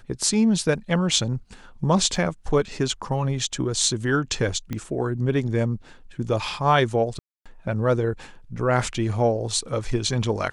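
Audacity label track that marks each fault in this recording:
2.160000	2.160000	dropout 3.7 ms
4.730000	4.730000	pop -16 dBFS
7.190000	7.460000	dropout 266 ms

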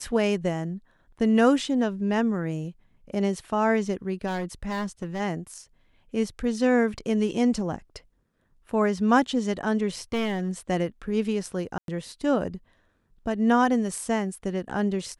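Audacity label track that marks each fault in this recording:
4.260000	5.210000	clipped -26 dBFS
10.130000	10.500000	clipped -22.5 dBFS
11.780000	11.880000	dropout 102 ms

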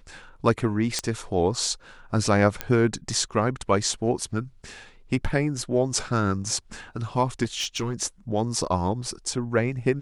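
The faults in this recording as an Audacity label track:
0.990000	0.990000	pop -10 dBFS
2.610000	2.610000	pop -10 dBFS
7.430000	8.030000	clipped -22 dBFS

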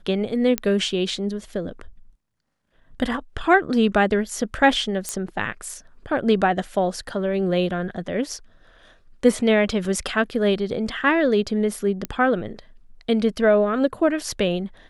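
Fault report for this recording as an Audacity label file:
0.580000	0.580000	pop -6 dBFS
5.090000	5.090000	pop -12 dBFS
9.850000	9.850000	dropout 2.1 ms
12.050000	12.050000	pop -12 dBFS

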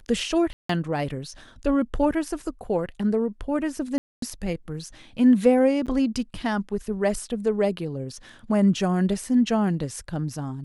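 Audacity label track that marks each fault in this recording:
0.530000	0.690000	dropout 164 ms
3.980000	4.220000	dropout 243 ms
5.860000	5.870000	dropout 7.4 ms

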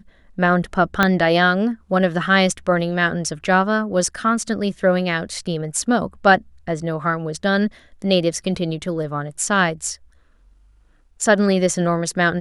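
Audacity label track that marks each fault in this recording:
1.030000	1.030000	pop -2 dBFS

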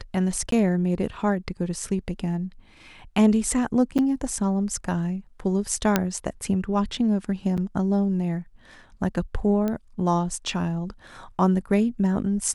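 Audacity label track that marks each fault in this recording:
0.510000	0.520000	dropout 13 ms
3.980000	3.990000	dropout 7.2 ms
5.960000	5.960000	pop -4 dBFS
7.570000	7.580000	dropout 7.7 ms
9.680000	9.680000	pop -15 dBFS

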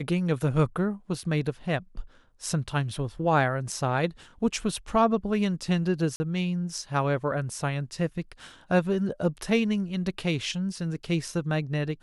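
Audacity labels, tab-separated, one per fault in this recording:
6.160000	6.200000	dropout 40 ms

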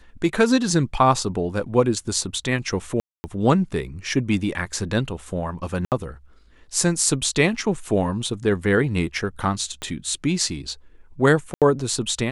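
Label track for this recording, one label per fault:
3.000000	3.240000	dropout 240 ms
5.850000	5.920000	dropout 68 ms
9.820000	9.820000	pop -16 dBFS
11.540000	11.620000	dropout 77 ms

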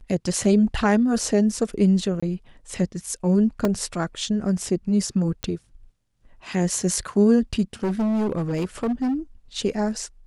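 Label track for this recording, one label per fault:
2.200000	2.230000	dropout 25 ms
3.650000	3.650000	dropout 2.1 ms
5.430000	5.430000	pop -14 dBFS
7.830000	9.140000	clipped -20 dBFS

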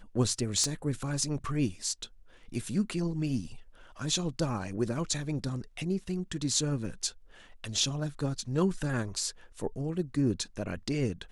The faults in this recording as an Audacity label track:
0.640000	0.640000	pop -17 dBFS

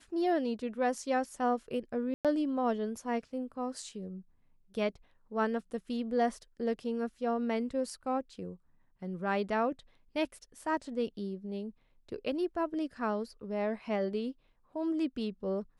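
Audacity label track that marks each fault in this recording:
2.140000	2.250000	dropout 107 ms

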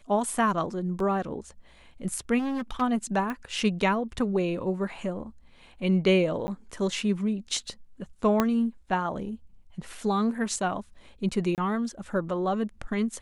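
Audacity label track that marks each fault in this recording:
1.000000	1.000000	dropout 3.2 ms
2.380000	2.820000	clipped -27.5 dBFS
3.300000	3.300000	pop -20 dBFS
6.470000	6.480000	dropout 10 ms
8.400000	8.400000	pop -9 dBFS
11.550000	11.580000	dropout 28 ms

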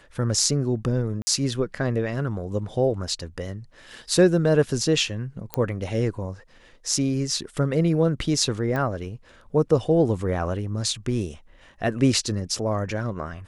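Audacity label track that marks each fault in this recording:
1.220000	1.270000	dropout 50 ms
5.540000	5.540000	pop -10 dBFS
8.760000	8.760000	pop -16 dBFS

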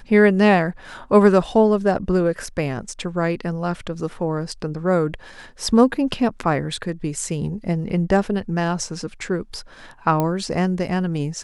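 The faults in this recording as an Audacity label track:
10.200000	10.200000	pop -9 dBFS

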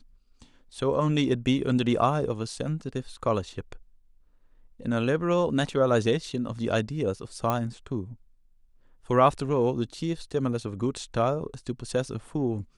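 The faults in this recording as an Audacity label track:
7.500000	7.500000	pop -13 dBFS

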